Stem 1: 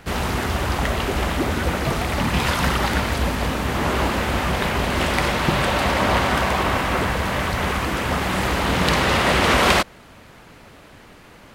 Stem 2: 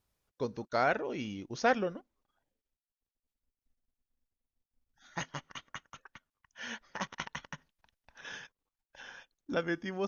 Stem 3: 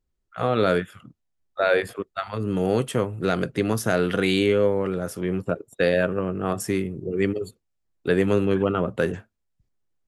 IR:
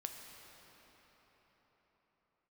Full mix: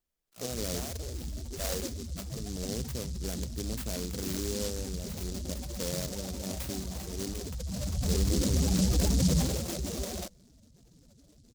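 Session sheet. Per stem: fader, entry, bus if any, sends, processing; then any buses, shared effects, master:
7.47 s -14 dB -> 8.19 s -1.5 dB -> 9.38 s -1.5 dB -> 9.65 s -11 dB, 0.45 s, no send, spectral contrast raised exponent 2.9; LPF 1100 Hz 12 dB/oct; limiter -15 dBFS, peak gain reduction 7.5 dB
-3.5 dB, 0.00 s, no send, HPF 280 Hz; limiter -22.5 dBFS, peak gain reduction 9 dB
-12.5 dB, 0.00 s, no send, high shelf 8500 Hz +10 dB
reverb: off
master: fifteen-band EQ 100 Hz -4 dB, 400 Hz -3 dB, 1000 Hz -11 dB, 2500 Hz -3 dB; noise-modulated delay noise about 5600 Hz, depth 0.22 ms

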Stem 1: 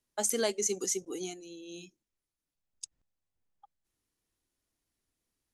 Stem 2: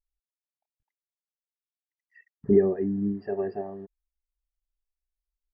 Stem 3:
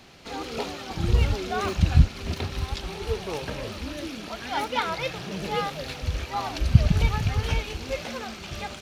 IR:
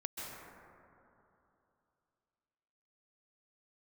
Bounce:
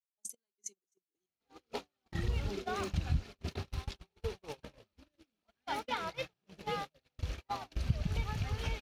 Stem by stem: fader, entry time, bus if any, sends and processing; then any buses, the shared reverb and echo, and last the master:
-3.0 dB, 0.00 s, no send, LFO notch square 1.3 Hz 560–1800 Hz; step gate "x.x..xx." 131 bpm -12 dB
-17.0 dB, 0.00 s, no send, backwards sustainer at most 22 dB/s
-2.0 dB, 1.15 s, no send, dry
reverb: off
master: gate -30 dBFS, range -48 dB; compressor 2:1, threshold -39 dBFS, peak gain reduction 15.5 dB

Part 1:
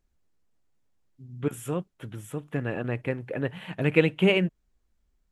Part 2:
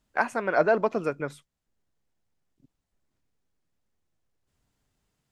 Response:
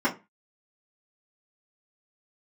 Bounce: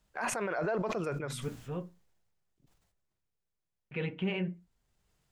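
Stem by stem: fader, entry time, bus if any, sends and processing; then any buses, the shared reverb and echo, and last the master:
-9.5 dB, 0.00 s, muted 1.86–3.91, send -18 dB, LPF 5400 Hz 24 dB/oct
+1.0 dB, 0.00 s, no send, bell 260 Hz -12 dB 0.31 oct; sustainer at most 43 dB/s; auto duck -11 dB, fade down 1.60 s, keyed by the first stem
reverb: on, RT60 0.25 s, pre-delay 3 ms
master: limiter -24.5 dBFS, peak gain reduction 15.5 dB

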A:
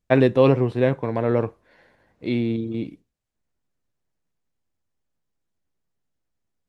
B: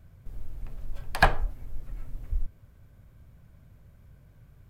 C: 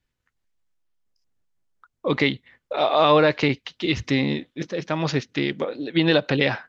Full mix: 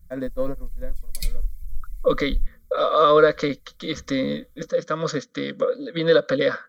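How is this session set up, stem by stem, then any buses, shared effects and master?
-5.5 dB, 0.00 s, no send, de-esser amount 85%; upward expander 2.5:1, over -28 dBFS; auto duck -14 dB, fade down 1.60 s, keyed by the third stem
-2.5 dB, 0.00 s, no send, FFT band-reject 190–2000 Hz; phaser 1.2 Hz, delay 3.3 ms, feedback 70%
-1.0 dB, 0.00 s, no send, thirty-one-band EQ 500 Hz +11 dB, 800 Hz -9 dB, 1250 Hz +9 dB, 3150 Hz +8 dB, 5000 Hz -3 dB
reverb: off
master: high shelf 5800 Hz +10.5 dB; fixed phaser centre 550 Hz, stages 8

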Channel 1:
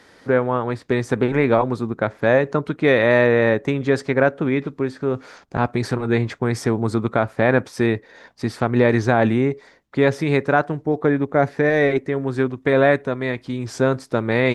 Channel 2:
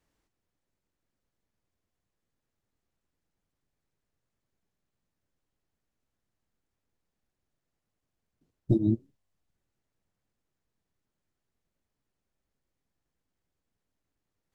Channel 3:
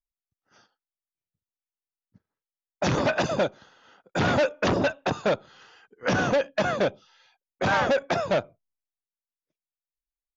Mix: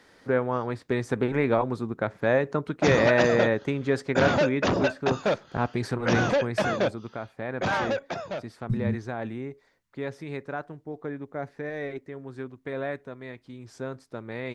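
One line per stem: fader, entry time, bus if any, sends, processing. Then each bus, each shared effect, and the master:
6.27 s -6.5 dB -> 6.86 s -16.5 dB, 0.00 s, no send, dry
+2.5 dB, 0.00 s, no send, FFT band-reject 230–890 Hz; limiter -21.5 dBFS, peak gain reduction 6 dB
-1.0 dB, 0.00 s, no send, auto duck -12 dB, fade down 1.15 s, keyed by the second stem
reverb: off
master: dry

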